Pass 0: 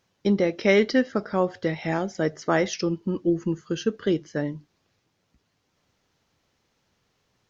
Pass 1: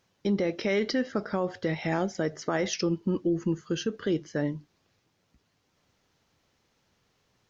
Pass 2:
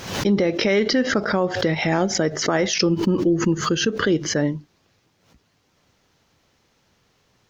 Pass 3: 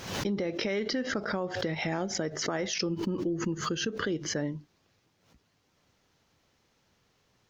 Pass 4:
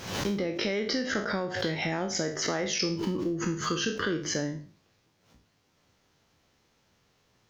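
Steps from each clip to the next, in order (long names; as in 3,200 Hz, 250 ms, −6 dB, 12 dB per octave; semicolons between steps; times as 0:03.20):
brickwall limiter −18 dBFS, peak gain reduction 10.5 dB
background raised ahead of every attack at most 78 dB per second; level +7.5 dB
downward compressor 2.5 to 1, threshold −23 dBFS, peak gain reduction 6.5 dB; level −6.5 dB
peak hold with a decay on every bin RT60 0.42 s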